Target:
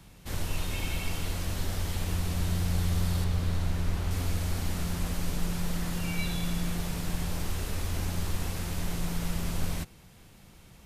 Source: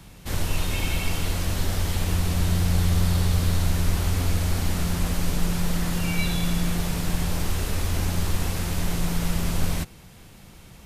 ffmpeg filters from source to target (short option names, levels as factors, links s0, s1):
-filter_complex "[0:a]asettb=1/sr,asplit=3[s0][s1][s2];[s0]atrim=end=3.244[s3];[s1]atrim=start=3.24:end=4.11,asetpts=PTS-STARTPTS,afade=t=in:d=0.004:c=qsin,afade=t=out:st=0.866:d=0.004:c=qsin,highshelf=f=4800:g=-8.5[s4];[s2]atrim=start=4.106[s5];[s3][s4]acrossfade=d=0.004:c1=hsin:c2=qsin[s6];[s6][s5]acrossfade=d=0.004:c1=qsin:c2=hsin,volume=0.473"